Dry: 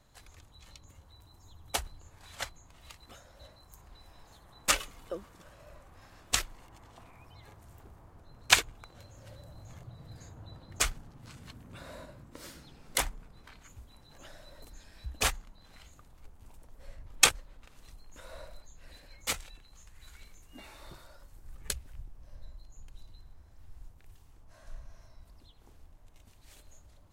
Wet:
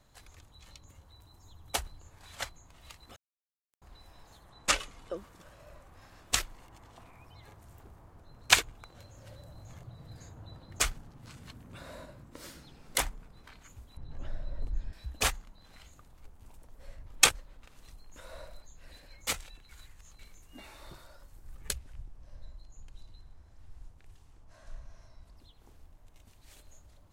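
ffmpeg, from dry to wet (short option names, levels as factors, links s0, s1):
-filter_complex "[0:a]asettb=1/sr,asplit=3[s0][s1][s2];[s0]atrim=end=3.164[s3];[s1]atrim=start=3.16:end=3.82,asetpts=PTS-STARTPTS,afade=t=in:d=0.004:c=qsin,afade=t=out:st=0.656:d=0.004:c=qsin,acrusher=bits=4:mix=0:aa=0.5[s4];[s2]atrim=start=3.816[s5];[s3][s4]acrossfade=d=0.004:c1=hsin:c2=qsin[s6];[s6][s5]acrossfade=d=0.004:c1=qsin:c2=hsin,asettb=1/sr,asplit=3[s7][s8][s9];[s7]atrim=end=4.494[s10];[s8]atrim=start=4.49:end=5.17,asetpts=PTS-STARTPTS,afade=t=in:d=0.004:c=qsin,afade=t=out:st=0.676:d=0.004:c=qsin,lowpass=8800[s11];[s9]atrim=start=5.166[s12];[s10][s11]acrossfade=d=0.004:c1=hsin:c2=qsin[s13];[s13][s12]acrossfade=d=0.004:c1=qsin:c2=hsin,asettb=1/sr,asplit=3[s14][s15][s16];[s14]atrim=end=13.974[s17];[s15]atrim=start=13.97:end=14.93,asetpts=PTS-STARTPTS,afade=t=in:d=0.004:c=qsin,afade=t=out:st=0.956:d=0.004:c=qsin,aemphasis=mode=reproduction:type=riaa[s18];[s16]atrim=start=14.926[s19];[s17][s18]acrossfade=d=0.004:c1=hsin:c2=qsin[s20];[s20][s19]acrossfade=d=0.004:c1=qsin:c2=hsin,asettb=1/sr,asplit=3[s21][s22][s23];[s21]atrim=end=21.784[s24];[s22]atrim=start=21.78:end=25.37,asetpts=PTS-STARTPTS,afade=t=in:d=0.004:c=qsin,afade=t=out:st=3.586:d=0.004:c=qsin,lowpass=10000[s25];[s23]atrim=start=25.366[s26];[s24][s25]acrossfade=d=0.004:c1=hsin:c2=qsin[s27];[s27][s26]acrossfade=d=0.004:c1=qsin:c2=hsin,asplit=3[s28][s29][s30];[s28]atrim=end=19.692[s31];[s29]atrim=start=19.688:end=20.192,asetpts=PTS-STARTPTS,areverse[s32];[s30]atrim=start=20.188[s33];[s31][s32]acrossfade=d=0.004:c1=hsin:c2=hsin[s34];[s34][s33]acrossfade=d=0.004:c1=hsin:c2=hsin"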